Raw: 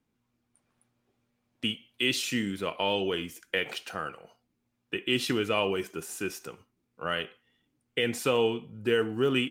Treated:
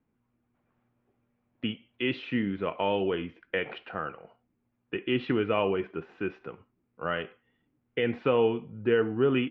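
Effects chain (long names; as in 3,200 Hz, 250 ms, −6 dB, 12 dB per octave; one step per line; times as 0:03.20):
Bessel low-pass filter 1,800 Hz, order 6
level +2 dB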